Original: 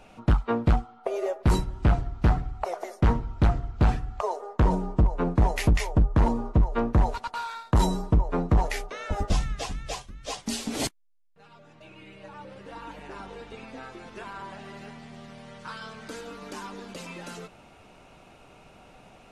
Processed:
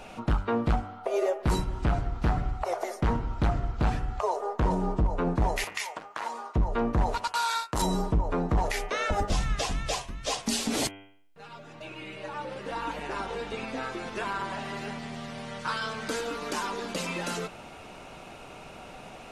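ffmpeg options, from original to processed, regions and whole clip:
-filter_complex "[0:a]asettb=1/sr,asplit=3[a][b][c];[a]atrim=end=5.644[d];[b]atrim=start=5.64:end=6.56,asetpts=PTS-STARTPTS,afade=t=in:d=0.004:c=qsin,afade=t=out:st=0.916:d=0.004:c=qsin,highpass=1.2k,acompressor=threshold=-39dB:ratio=2.5:attack=3.2:release=140:knee=1:detection=peak[e];[c]atrim=start=6.556[f];[d][e]acrossfade=d=0.004:c1=hsin:c2=qsin[g];[g][f]acrossfade=d=0.004:c1=qsin:c2=hsin,asettb=1/sr,asplit=3[h][i][j];[h]atrim=end=7.244[k];[i]atrim=start=7.24:end=7.82,asetpts=PTS-STARTPTS,afade=t=in:d=0.004:c=qsin,afade=t=out:st=0.576:d=0.004:c=qsin,agate=range=-21dB:threshold=-45dB:ratio=16:release=100:detection=peak,bass=f=250:g=-7,treble=f=4k:g=10[l];[j]atrim=start=7.816[m];[k][l]acrossfade=d=0.004:c1=hsin:c2=qsin[n];[n][m]acrossfade=d=0.004:c1=qsin:c2=hsin,lowshelf=f=220:g=-4.5,bandreject=f=97.56:t=h:w=4,bandreject=f=195.12:t=h:w=4,bandreject=f=292.68:t=h:w=4,bandreject=f=390.24:t=h:w=4,bandreject=f=487.8:t=h:w=4,bandreject=f=585.36:t=h:w=4,bandreject=f=682.92:t=h:w=4,bandreject=f=780.48:t=h:w=4,bandreject=f=878.04:t=h:w=4,bandreject=f=975.6:t=h:w=4,bandreject=f=1.07316k:t=h:w=4,bandreject=f=1.17072k:t=h:w=4,bandreject=f=1.26828k:t=h:w=4,bandreject=f=1.36584k:t=h:w=4,bandreject=f=1.4634k:t=h:w=4,bandreject=f=1.56096k:t=h:w=4,bandreject=f=1.65852k:t=h:w=4,bandreject=f=1.75608k:t=h:w=4,bandreject=f=1.85364k:t=h:w=4,bandreject=f=1.9512k:t=h:w=4,bandreject=f=2.04876k:t=h:w=4,bandreject=f=2.14632k:t=h:w=4,bandreject=f=2.24388k:t=h:w=4,bandreject=f=2.34144k:t=h:w=4,bandreject=f=2.439k:t=h:w=4,bandreject=f=2.53656k:t=h:w=4,bandreject=f=2.63412k:t=h:w=4,bandreject=f=2.73168k:t=h:w=4,bandreject=f=2.82924k:t=h:w=4,bandreject=f=2.9268k:t=h:w=4,bandreject=f=3.02436k:t=h:w=4,bandreject=f=3.12192k:t=h:w=4,bandreject=f=3.21948k:t=h:w=4,alimiter=level_in=2.5dB:limit=-24dB:level=0:latency=1:release=180,volume=-2.5dB,volume=8.5dB"

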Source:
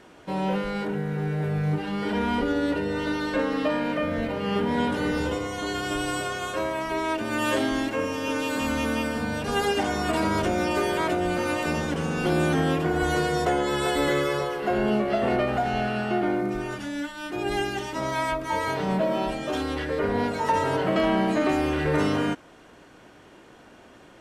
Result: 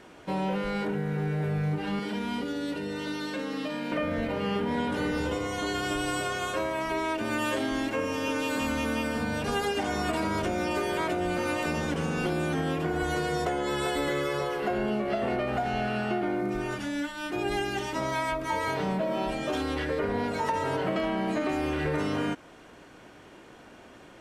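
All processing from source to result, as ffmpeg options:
-filter_complex "[0:a]asettb=1/sr,asplit=3[a][b][c];[a]atrim=end=1.994[d];[b]atrim=start=1.99:end=3.92,asetpts=PTS-STARTPTS,afade=t=in:d=0.004:c=qsin,afade=t=out:st=1.926:d=0.004:c=qsin,highpass=170,acrossover=split=220|3000[e][f][g];[f]acompressor=threshold=-35dB:ratio=4:attack=3.2:release=140:knee=2.83:detection=peak[h];[e][h][g]amix=inputs=3:normalize=0[i];[c]atrim=start=3.916[j];[d][i]acrossfade=d=0.004:c1=hsin:c2=qsin[k];[k][j]acrossfade=d=0.004:c1=qsin:c2=hsin,equalizer=f=2.3k:t=o:w=0.23:g=2,acompressor=threshold=-25dB:ratio=6"

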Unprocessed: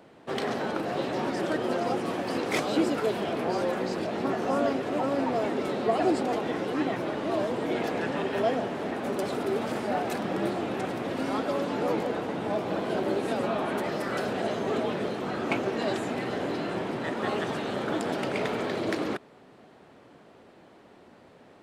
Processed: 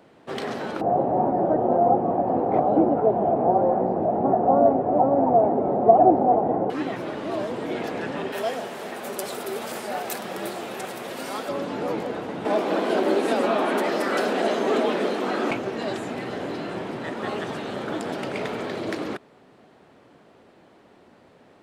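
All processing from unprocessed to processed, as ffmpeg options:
-filter_complex "[0:a]asettb=1/sr,asplit=3[a][b][c];[a]atrim=end=0.814[d];[b]atrim=start=0.81:end=6.7,asetpts=PTS-STARTPTS,afade=t=in:d=0.004:c=qsin,afade=t=out:st=5.886:d=0.004:c=qsin,lowpass=f=750:t=q:w=4.6,lowshelf=f=250:g=8.5[e];[c]atrim=start=6.696[f];[d][e]acrossfade=d=0.004:c1=hsin:c2=qsin[g];[g][f]acrossfade=d=0.004:c1=qsin:c2=hsin,asettb=1/sr,asplit=3[h][i][j];[h]atrim=end=8.324[k];[i]atrim=start=8.32:end=11.49,asetpts=PTS-STARTPTS,afade=t=in:d=0.004:c=qsin,afade=t=out:st=3.166:d=0.004:c=qsin,aemphasis=mode=production:type=bsi,bandreject=f=290:w=5.2[l];[j]atrim=start=11.486[m];[k][l]acrossfade=d=0.004:c1=hsin:c2=qsin[n];[n][m]acrossfade=d=0.004:c1=qsin:c2=hsin,asettb=1/sr,asplit=3[o][p][q];[o]atrim=end=12.454[r];[p]atrim=start=12.45:end=15.51,asetpts=PTS-STARTPTS,afade=t=in:d=0.004:c=qsin,afade=t=out:st=3.056:d=0.004:c=qsin,highpass=f=220:w=0.5412,highpass=f=220:w=1.3066,acontrast=75[s];[q]atrim=start=15.506[t];[r][s]acrossfade=d=0.004:c1=hsin:c2=qsin[u];[u][t]acrossfade=d=0.004:c1=qsin:c2=hsin"

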